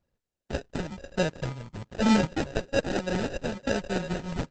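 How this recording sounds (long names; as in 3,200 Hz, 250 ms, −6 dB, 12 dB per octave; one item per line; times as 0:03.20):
a buzz of ramps at a fixed pitch in blocks of 16 samples
phaser sweep stages 4, 1.1 Hz, lowest notch 370–2,100 Hz
aliases and images of a low sample rate 1,100 Hz, jitter 0%
Opus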